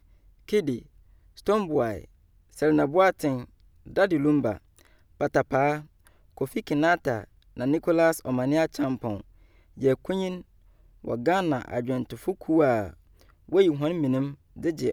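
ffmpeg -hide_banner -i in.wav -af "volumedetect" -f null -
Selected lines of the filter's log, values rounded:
mean_volume: -26.5 dB
max_volume: -8.8 dB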